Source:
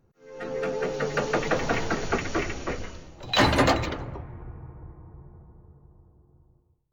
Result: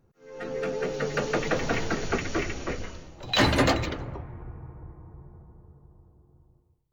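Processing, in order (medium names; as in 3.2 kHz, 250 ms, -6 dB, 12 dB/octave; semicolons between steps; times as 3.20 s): dynamic bell 920 Hz, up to -4 dB, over -39 dBFS, Q 1.1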